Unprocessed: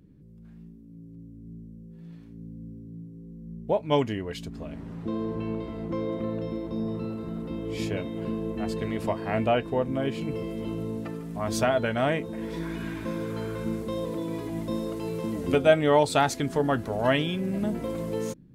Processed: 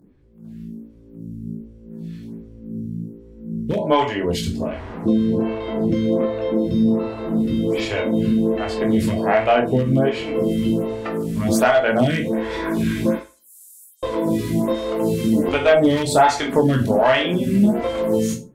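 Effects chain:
0:13.15–0:14.03: inverse Chebyshev high-pass filter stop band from 1,500 Hz, stop band 80 dB
convolution reverb RT60 0.30 s, pre-delay 16 ms, DRR 0.5 dB
downward compressor 2 to 1, threshold −27 dBFS, peak gain reduction 8.5 dB
asymmetric clip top −21.5 dBFS, bottom −17.5 dBFS
automatic gain control gain up to 8 dB
phaser with staggered stages 1.3 Hz
level +5.5 dB

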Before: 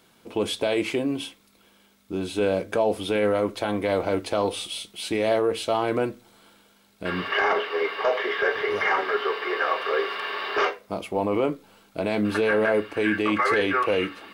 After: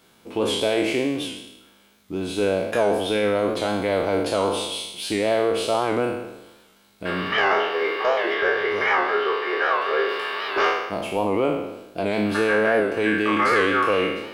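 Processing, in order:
peak hold with a decay on every bin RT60 0.97 s
0:08.34–0:10.09: high-shelf EQ 7,000 Hz −7 dB
wow of a warped record 78 rpm, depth 100 cents

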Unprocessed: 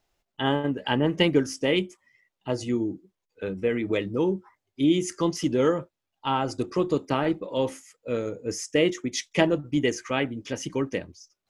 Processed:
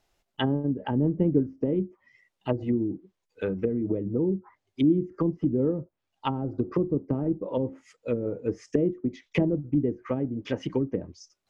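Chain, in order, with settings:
treble cut that deepens with the level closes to 310 Hz, closed at −23 dBFS
level +2.5 dB

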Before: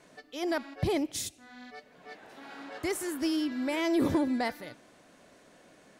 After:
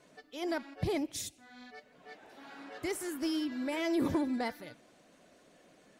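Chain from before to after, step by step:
spectral magnitudes quantised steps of 15 dB
level −3.5 dB

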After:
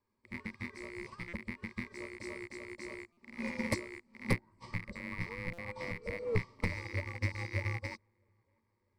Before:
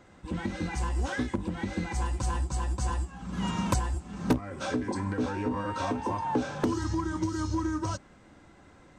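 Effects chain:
loose part that buzzes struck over −35 dBFS, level −21 dBFS
parametric band 200 Hz −3 dB 2.2 octaves
frequency shifter −420 Hz
EQ curve with evenly spaced ripples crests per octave 0.91, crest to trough 12 dB
delay with a low-pass on its return 644 ms, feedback 50%, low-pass 1,400 Hz, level −19.5 dB
buffer that repeats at 0:01.28/0:03.12/0:05.53, samples 256, times 8
expander for the loud parts 2.5 to 1, over −38 dBFS
level −2.5 dB

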